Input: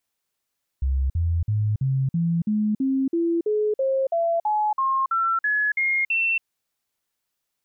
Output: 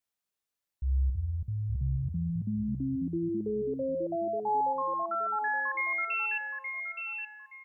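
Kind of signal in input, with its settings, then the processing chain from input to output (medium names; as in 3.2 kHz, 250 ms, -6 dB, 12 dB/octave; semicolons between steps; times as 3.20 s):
stepped sine 66.8 Hz up, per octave 3, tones 17, 0.28 s, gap 0.05 s -19 dBFS
feedback comb 65 Hz, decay 1 s, harmonics odd, mix 70%; on a send: feedback delay 871 ms, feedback 26%, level -5.5 dB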